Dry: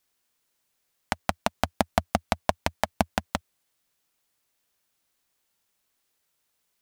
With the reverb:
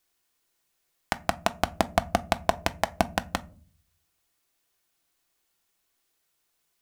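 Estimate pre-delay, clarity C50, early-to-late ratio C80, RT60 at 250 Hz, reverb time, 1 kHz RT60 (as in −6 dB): 3 ms, 23.0 dB, 27.5 dB, 0.70 s, 0.40 s, 0.30 s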